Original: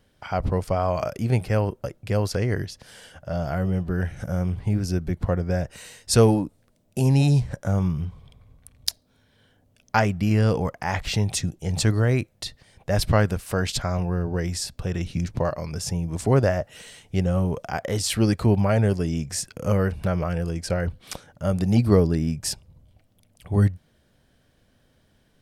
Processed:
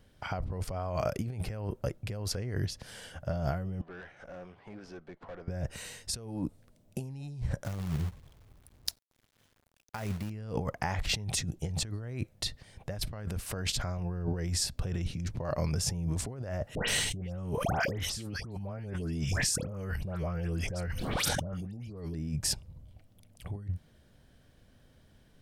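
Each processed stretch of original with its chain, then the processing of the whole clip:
3.81–5.48 s: high-pass 640 Hz + valve stage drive 38 dB, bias 0.4 + tape spacing loss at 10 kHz 25 dB
7.64–10.30 s: companded quantiser 4-bit + upward expansion, over -35 dBFS
16.75–22.14 s: phase dispersion highs, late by 130 ms, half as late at 1.7 kHz + swell ahead of each attack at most 34 dB/s
whole clip: bass shelf 150 Hz +5.5 dB; compressor with a negative ratio -27 dBFS, ratio -1; trim -7.5 dB

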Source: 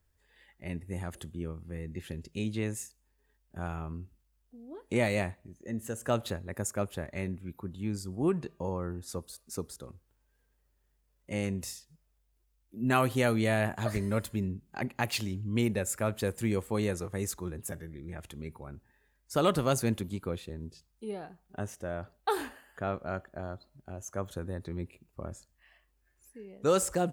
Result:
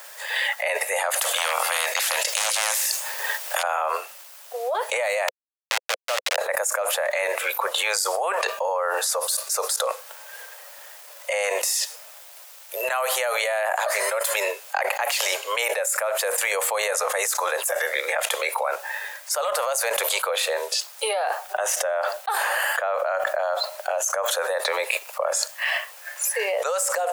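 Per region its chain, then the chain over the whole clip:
1.15–3.63 s: hum notches 50/100/150/200/250/300/350/400/450 Hz + hard clipper -29.5 dBFS + spectrum-flattening compressor 4:1
5.28–6.38 s: send-on-delta sampling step -28.5 dBFS + frequency weighting D
whole clip: steep high-pass 520 Hz 72 dB/octave; dynamic bell 3.6 kHz, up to -5 dB, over -52 dBFS, Q 1.2; level flattener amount 100%

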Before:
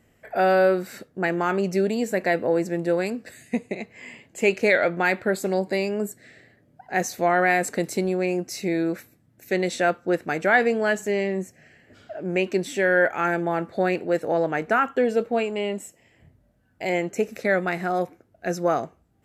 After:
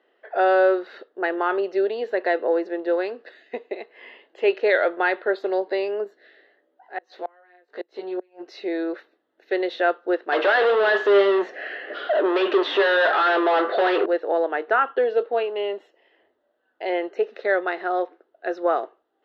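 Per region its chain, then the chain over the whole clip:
6.04–8.46 s: transient shaper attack -5 dB, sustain +2 dB + chorus 1.5 Hz, delay 15 ms, depth 3 ms + inverted gate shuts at -17 dBFS, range -32 dB
10.32–14.06 s: band-stop 900 Hz, Q 6.7 + overdrive pedal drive 37 dB, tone 2 kHz, clips at -6.5 dBFS + feedback comb 100 Hz, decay 0.29 s
whole clip: elliptic band-pass 370–3700 Hz, stop band 40 dB; peaking EQ 2.3 kHz -13.5 dB 0.21 oct; trim +2 dB

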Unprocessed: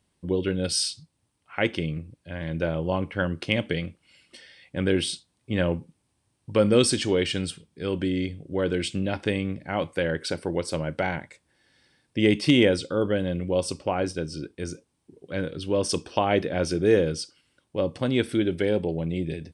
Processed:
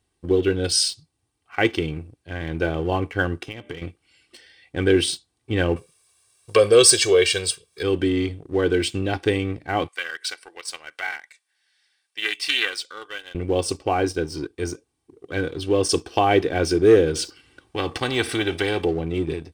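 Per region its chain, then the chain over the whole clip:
3.40–3.82 s: band-stop 4.3 kHz, Q 6.2 + de-hum 198.3 Hz, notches 11 + compression 4:1, threshold -35 dBFS
5.76–7.83 s: tone controls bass -10 dB, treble +6 dB + comb 1.8 ms, depth 84% + tape noise reduction on one side only encoder only
9.88–13.35 s: high-pass 1.5 kHz + loudspeaker Doppler distortion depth 0.13 ms
17.15–18.85 s: treble shelf 4.6 kHz -9 dB + band-stop 690 Hz, Q 16 + spectrum-flattening compressor 2:1
whole clip: comb 2.6 ms, depth 62%; waveshaping leveller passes 1

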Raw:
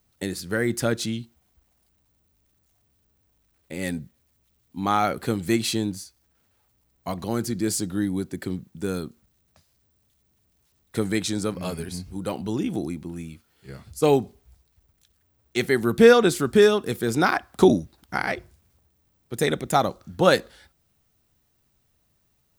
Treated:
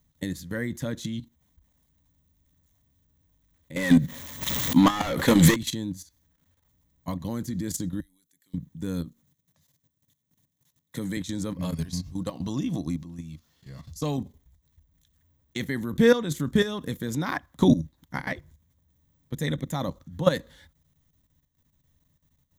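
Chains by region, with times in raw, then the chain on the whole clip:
3.76–5.56 s: overdrive pedal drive 31 dB, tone 5.3 kHz, clips at -7.5 dBFS + swell ahead of each attack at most 29 dB/s
8.00–8.54 s: differentiator + compression, threshold -52 dBFS
9.05–11.17 s: high-pass 100 Hz 24 dB/octave + peaking EQ 11 kHz +4.5 dB 2.4 oct
11.74–14.18 s: peaking EQ 5.1 kHz +11 dB 0.8 oct + compression 4:1, threshold -24 dBFS + small resonant body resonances 690/1100/2700 Hz, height 9 dB, ringing for 30 ms
whole clip: resonant low shelf 280 Hz +6.5 dB, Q 1.5; level held to a coarse grid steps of 13 dB; rippled EQ curve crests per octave 1.1, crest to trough 8 dB; trim -2.5 dB

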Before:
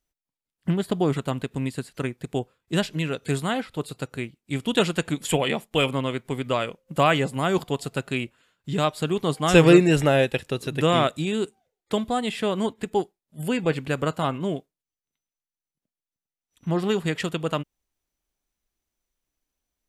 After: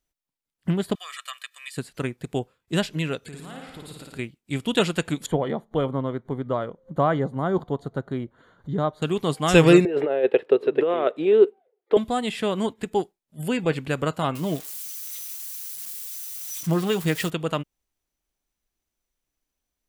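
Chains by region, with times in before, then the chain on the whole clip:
0.95–1.77 s: high-pass 1.4 kHz 24 dB/octave + comb 1.7 ms, depth 99%
3.27–4.19 s: compression, threshold -38 dBFS + flutter echo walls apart 9.5 m, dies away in 1.1 s
5.26–9.02 s: upward compressor, threshold -34 dBFS + boxcar filter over 17 samples
9.85–11.97 s: compressor with a negative ratio -22 dBFS, ratio -0.5 + resonant high-pass 420 Hz, resonance Q 4.2 + distance through air 460 m
14.35–17.30 s: zero-crossing glitches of -27.5 dBFS + comb 6.4 ms, depth 42%
whole clip: none

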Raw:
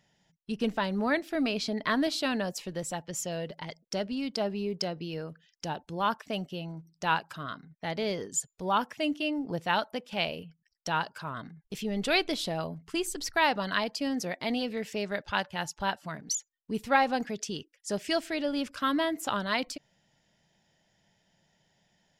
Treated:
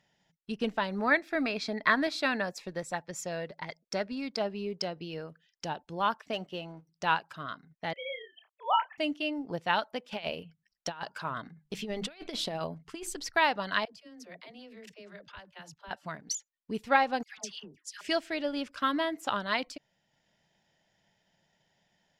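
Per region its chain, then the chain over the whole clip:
0.87–4.39 s: band-stop 3 kHz, Q 5.4 + dynamic bell 1.8 kHz, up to +6 dB, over -45 dBFS, Q 0.9
6.33–6.89 s: tone controls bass -7 dB, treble -5 dB + hum notches 50/100/150/200/250/300 Hz + waveshaping leveller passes 1
7.93–8.98 s: formants replaced by sine waves + high-pass 670 Hz 24 dB/octave + doubling 29 ms -7 dB
10.04–13.15 s: hum notches 50/100/150/200 Hz + compressor with a negative ratio -33 dBFS, ratio -0.5
13.85–15.91 s: band-stop 830 Hz, Q 6.6 + level held to a coarse grid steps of 23 dB + phase dispersion lows, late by 88 ms, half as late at 300 Hz
17.23–18.01 s: resonant low shelf 630 Hz -8 dB, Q 1.5 + phase dispersion lows, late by 148 ms, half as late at 1.1 kHz
whole clip: treble shelf 7.2 kHz -10.5 dB; transient shaper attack +2 dB, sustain -3 dB; bass shelf 380 Hz -5.5 dB

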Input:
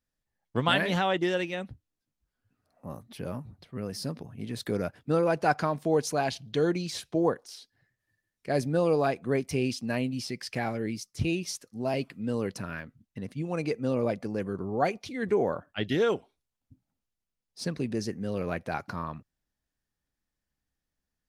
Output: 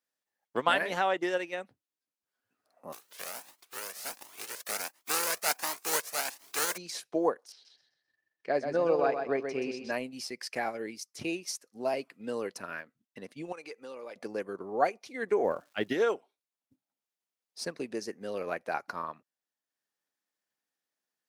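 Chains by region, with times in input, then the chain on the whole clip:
2.92–6.76 s: spectral contrast reduction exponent 0.22 + Shepard-style flanger rising 1.4 Hz
7.52–9.92 s: distance through air 140 m + feedback delay 128 ms, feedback 32%, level -5 dB
13.52–14.16 s: peaking EQ 140 Hz -13 dB 2.8 oct + band-stop 670 Hz, Q 5.8 + compression 3:1, threshold -39 dBFS
15.43–15.92 s: bass shelf 300 Hz +10 dB + crackle 490 per s -50 dBFS
whole clip: high-pass 410 Hz 12 dB/octave; dynamic bell 3.4 kHz, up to -7 dB, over -52 dBFS, Q 2.1; transient shaper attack +2 dB, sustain -5 dB

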